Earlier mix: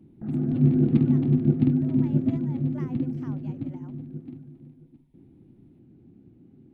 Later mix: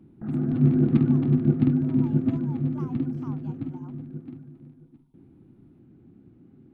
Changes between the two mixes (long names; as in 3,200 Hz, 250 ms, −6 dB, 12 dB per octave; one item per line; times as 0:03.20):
speech: add phaser with its sweep stopped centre 360 Hz, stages 8
master: add parametric band 1,300 Hz +8 dB 1 octave